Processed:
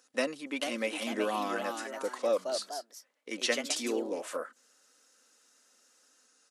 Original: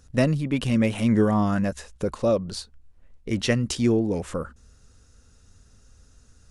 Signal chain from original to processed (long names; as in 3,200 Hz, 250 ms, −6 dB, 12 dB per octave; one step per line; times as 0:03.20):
high-pass filter 290 Hz 24 dB per octave
low-shelf EQ 480 Hz −10.5 dB
comb filter 3.9 ms, depth 40%
delay with pitch and tempo change per echo 463 ms, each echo +2 semitones, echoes 2, each echo −6 dB
level −3 dB